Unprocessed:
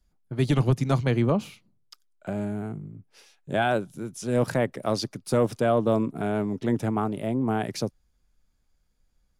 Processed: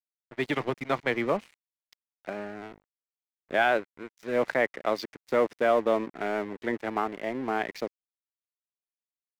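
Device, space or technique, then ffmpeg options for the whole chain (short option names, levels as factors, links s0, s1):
pocket radio on a weak battery: -af "highpass=370,lowpass=3700,aeval=exprs='sgn(val(0))*max(abs(val(0))-0.00631,0)':c=same,equalizer=f=2000:t=o:w=0.52:g=8.5,volume=1.12"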